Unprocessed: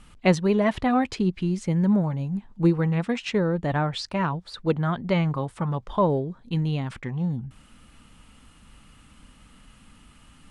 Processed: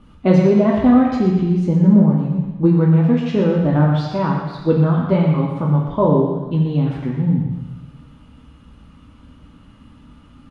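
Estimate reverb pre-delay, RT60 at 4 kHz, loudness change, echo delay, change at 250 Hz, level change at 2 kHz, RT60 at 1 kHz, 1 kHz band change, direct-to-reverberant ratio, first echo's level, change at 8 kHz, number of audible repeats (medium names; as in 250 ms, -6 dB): 3 ms, 1.2 s, +9.0 dB, 119 ms, +9.5 dB, -0.5 dB, 1.2 s, +4.0 dB, -2.5 dB, -9.0 dB, no reading, 1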